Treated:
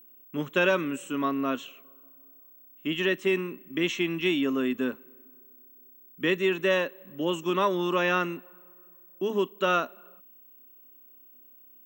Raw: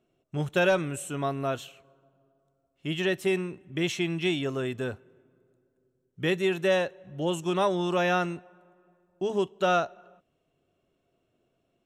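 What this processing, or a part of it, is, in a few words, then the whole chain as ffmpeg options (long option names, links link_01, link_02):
old television with a line whistle: -af "highpass=frequency=190:width=0.5412,highpass=frequency=190:width=1.3066,equalizer=frequency=260:width_type=q:width=4:gain=10,equalizer=frequency=740:width_type=q:width=4:gain=-10,equalizer=frequency=1100:width_type=q:width=4:gain=7,equalizer=frequency=1900:width_type=q:width=4:gain=3,equalizer=frequency=2800:width_type=q:width=4:gain=4,equalizer=frequency=4700:width_type=q:width=4:gain=-9,lowpass=frequency=7100:width=0.5412,lowpass=frequency=7100:width=1.3066,aeval=exprs='val(0)+0.00282*sin(2*PI*15734*n/s)':channel_layout=same"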